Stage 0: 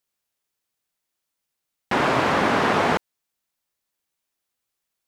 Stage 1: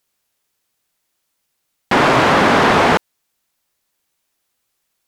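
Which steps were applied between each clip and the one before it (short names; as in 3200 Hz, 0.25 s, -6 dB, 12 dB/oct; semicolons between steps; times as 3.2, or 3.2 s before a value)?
sine folder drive 6 dB, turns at -7.5 dBFS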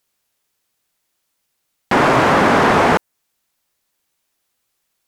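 dynamic EQ 3700 Hz, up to -5 dB, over -35 dBFS, Q 0.99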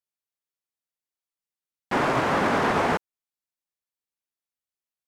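upward expander 2.5:1, over -22 dBFS; gain -8.5 dB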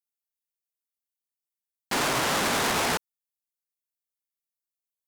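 sample leveller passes 3; pre-emphasis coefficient 0.8; gain +5 dB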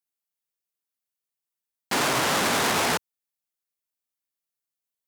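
HPF 73 Hz; gain +2 dB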